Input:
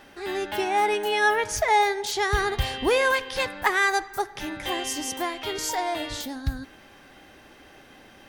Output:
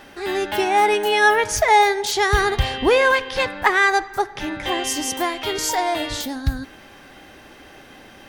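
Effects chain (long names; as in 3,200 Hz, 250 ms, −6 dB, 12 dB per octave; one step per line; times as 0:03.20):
0:02.59–0:04.84: high-shelf EQ 7,400 Hz −12 dB
level +6 dB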